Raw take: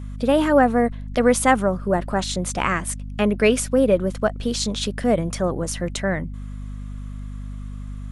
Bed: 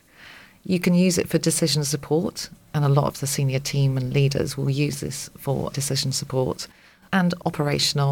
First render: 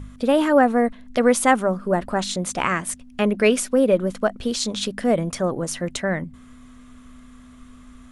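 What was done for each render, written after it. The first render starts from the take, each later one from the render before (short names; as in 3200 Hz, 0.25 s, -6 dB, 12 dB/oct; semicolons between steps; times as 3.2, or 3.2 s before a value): de-hum 50 Hz, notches 4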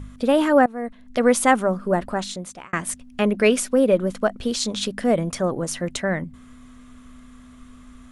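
0.66–1.29 fade in, from -20.5 dB; 1.99–2.73 fade out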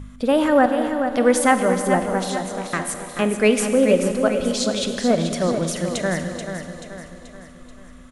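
on a send: feedback echo 0.433 s, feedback 48%, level -8 dB; on the sum: Schroeder reverb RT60 2.6 s, combs from 33 ms, DRR 8 dB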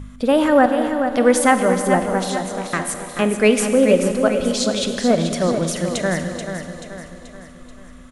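gain +2 dB; limiter -1 dBFS, peak gain reduction 1 dB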